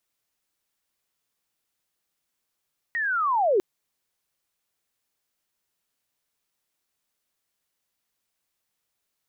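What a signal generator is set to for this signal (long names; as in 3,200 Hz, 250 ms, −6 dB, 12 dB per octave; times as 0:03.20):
glide linear 1,900 Hz → 350 Hz −24 dBFS → −17 dBFS 0.65 s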